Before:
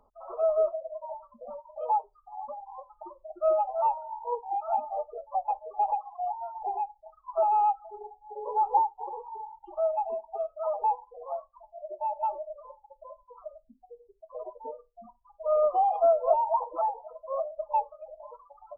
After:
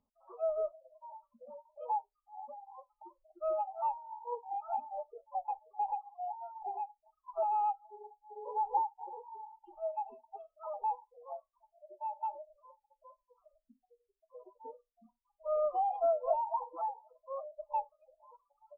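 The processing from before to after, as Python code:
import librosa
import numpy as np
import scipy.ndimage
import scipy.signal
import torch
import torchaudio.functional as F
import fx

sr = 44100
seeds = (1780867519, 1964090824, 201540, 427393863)

y = fx.noise_reduce_blind(x, sr, reduce_db=15)
y = F.gain(torch.from_numpy(y), -7.5).numpy()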